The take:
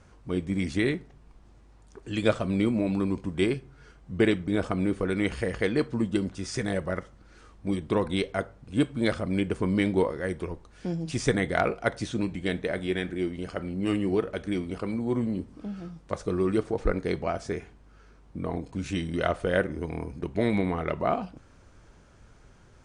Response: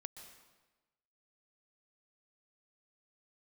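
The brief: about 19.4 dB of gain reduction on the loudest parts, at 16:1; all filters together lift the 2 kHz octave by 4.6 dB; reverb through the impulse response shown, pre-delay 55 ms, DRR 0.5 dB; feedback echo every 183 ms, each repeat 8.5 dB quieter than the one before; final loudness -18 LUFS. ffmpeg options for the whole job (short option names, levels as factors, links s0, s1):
-filter_complex "[0:a]equalizer=f=2000:t=o:g=5.5,acompressor=threshold=0.0141:ratio=16,aecho=1:1:183|366|549|732:0.376|0.143|0.0543|0.0206,asplit=2[s0][s1];[1:a]atrim=start_sample=2205,adelay=55[s2];[s1][s2]afir=irnorm=-1:irlink=0,volume=1.58[s3];[s0][s3]amix=inputs=2:normalize=0,volume=11.9"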